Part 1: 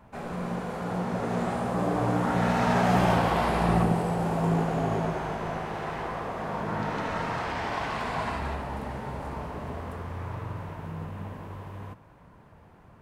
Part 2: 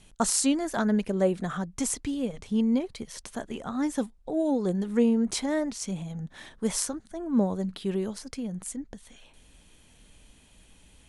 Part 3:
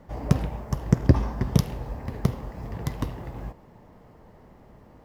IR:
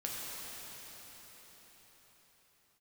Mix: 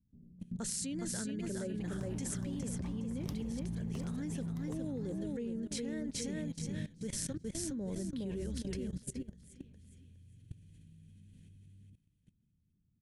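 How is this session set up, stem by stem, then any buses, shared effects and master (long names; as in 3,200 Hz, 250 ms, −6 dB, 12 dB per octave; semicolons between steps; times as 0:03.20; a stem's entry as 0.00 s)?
−4.5 dB, 0.00 s, no send, echo send −24 dB, inverse Chebyshev band-stop filter 1,000–9,800 Hz, stop band 70 dB
−5.0 dB, 0.40 s, no send, echo send −4 dB, flat-topped bell 910 Hz −12 dB 1.2 octaves
−12.5 dB, 1.70 s, no send, no echo send, no processing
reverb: not used
echo: repeating echo 413 ms, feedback 35%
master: output level in coarse steps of 19 dB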